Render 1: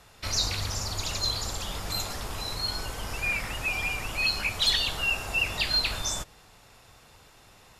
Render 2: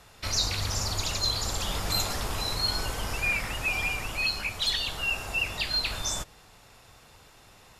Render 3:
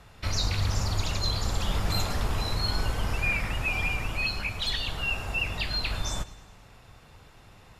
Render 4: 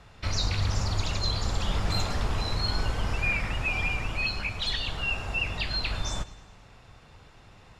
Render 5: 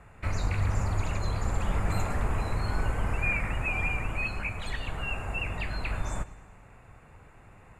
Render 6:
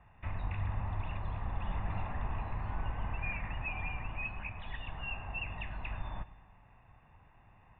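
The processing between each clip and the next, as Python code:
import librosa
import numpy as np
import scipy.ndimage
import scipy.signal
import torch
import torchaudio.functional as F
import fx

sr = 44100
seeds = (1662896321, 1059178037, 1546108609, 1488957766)

y1 = fx.rider(x, sr, range_db=4, speed_s=0.5)
y2 = fx.bass_treble(y1, sr, bass_db=6, treble_db=-7)
y2 = fx.echo_feedback(y2, sr, ms=105, feedback_pct=58, wet_db=-18.5)
y3 = scipy.signal.sosfilt(scipy.signal.butter(2, 7600.0, 'lowpass', fs=sr, output='sos'), y2)
y4 = fx.band_shelf(y3, sr, hz=4300.0, db=-16.0, octaves=1.2)
y4 = fx.notch(y4, sr, hz=5400.0, q=17.0)
y5 = scipy.signal.sosfilt(scipy.signal.cheby1(6, 3, 3600.0, 'lowpass', fs=sr, output='sos'), y4)
y5 = y5 + 0.47 * np.pad(y5, (int(1.1 * sr / 1000.0), 0))[:len(y5)]
y5 = y5 * librosa.db_to_amplitude(-8.0)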